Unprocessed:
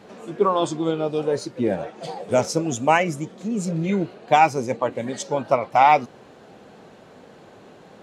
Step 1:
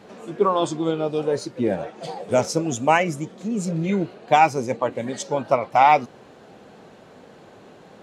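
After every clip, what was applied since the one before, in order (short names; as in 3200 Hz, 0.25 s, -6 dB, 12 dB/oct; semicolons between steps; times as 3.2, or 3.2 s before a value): nothing audible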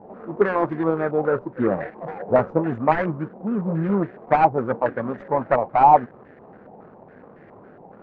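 median filter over 41 samples; stepped low-pass 7.2 Hz 850–1800 Hz; gain +1 dB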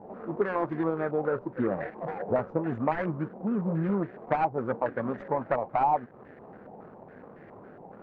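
compressor 2.5:1, threshold -24 dBFS, peak gain reduction 11 dB; gain -2 dB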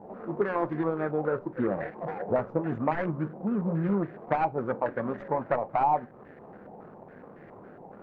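reverb RT60 0.30 s, pre-delay 6 ms, DRR 16.5 dB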